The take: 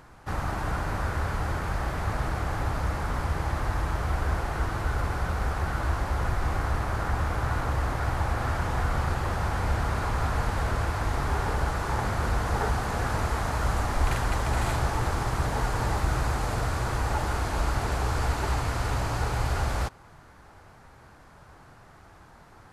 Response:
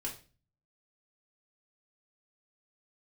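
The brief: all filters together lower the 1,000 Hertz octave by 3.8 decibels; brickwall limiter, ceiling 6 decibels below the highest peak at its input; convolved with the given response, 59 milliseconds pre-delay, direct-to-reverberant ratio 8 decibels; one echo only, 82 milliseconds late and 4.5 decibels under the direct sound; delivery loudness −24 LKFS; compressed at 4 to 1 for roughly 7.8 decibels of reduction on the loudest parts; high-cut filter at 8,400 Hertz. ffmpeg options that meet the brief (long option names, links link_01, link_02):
-filter_complex "[0:a]lowpass=8400,equalizer=frequency=1000:width_type=o:gain=-5,acompressor=threshold=-31dB:ratio=4,alimiter=level_in=3.5dB:limit=-24dB:level=0:latency=1,volume=-3.5dB,aecho=1:1:82:0.596,asplit=2[link_01][link_02];[1:a]atrim=start_sample=2205,adelay=59[link_03];[link_02][link_03]afir=irnorm=-1:irlink=0,volume=-8dB[link_04];[link_01][link_04]amix=inputs=2:normalize=0,volume=11.5dB"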